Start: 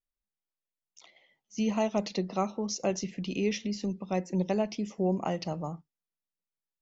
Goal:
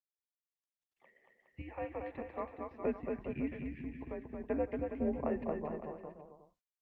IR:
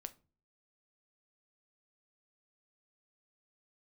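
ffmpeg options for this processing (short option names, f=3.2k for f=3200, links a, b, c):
-filter_complex "[0:a]asettb=1/sr,asplit=3[a][b][c];[a]atrim=end=1.614[d];[b]atrim=start=1.61:end=2.71,asetpts=PTS-STARTPTS,afade=t=in:d=0.004:c=qsin,afade=t=out:st=1.096:d=0.004:c=qsin,equalizer=f=270:w=0.35:g=-11[e];[c]atrim=start=2.706[f];[d][e]acrossfade=d=0.004:c1=hsin:c2=qsin[g];[g][f]acrossfade=d=0.004:c1=qsin:c2=hsin,asplit=3[h][i][j];[h]afade=t=out:st=3.45:d=0.02[k];[i]acompressor=threshold=-33dB:ratio=4,afade=t=in:st=3.45:d=0.02,afade=t=out:st=4.45:d=0.02[l];[j]afade=t=in:st=4.45:d=0.02[m];[k][l][m]amix=inputs=3:normalize=0,aecho=1:1:230|414|561.2|679|773.2:0.631|0.398|0.251|0.158|0.1,highpass=f=290:t=q:w=0.5412,highpass=f=290:t=q:w=1.307,lowpass=f=2.3k:t=q:w=0.5176,lowpass=f=2.3k:t=q:w=0.7071,lowpass=f=2.3k:t=q:w=1.932,afreqshift=-140,volume=-4dB" -ar 48000 -c:a libopus -b:a 48k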